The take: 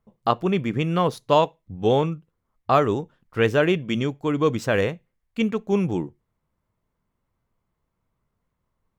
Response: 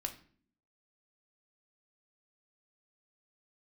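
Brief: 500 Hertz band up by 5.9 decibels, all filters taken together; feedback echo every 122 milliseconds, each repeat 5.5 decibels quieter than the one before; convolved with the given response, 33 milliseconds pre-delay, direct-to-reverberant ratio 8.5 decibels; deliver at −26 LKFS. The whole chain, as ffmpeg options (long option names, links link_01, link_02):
-filter_complex "[0:a]equalizer=frequency=500:width_type=o:gain=7,aecho=1:1:122|244|366|488|610|732|854:0.531|0.281|0.149|0.079|0.0419|0.0222|0.0118,asplit=2[link_01][link_02];[1:a]atrim=start_sample=2205,adelay=33[link_03];[link_02][link_03]afir=irnorm=-1:irlink=0,volume=-8dB[link_04];[link_01][link_04]amix=inputs=2:normalize=0,volume=-8.5dB"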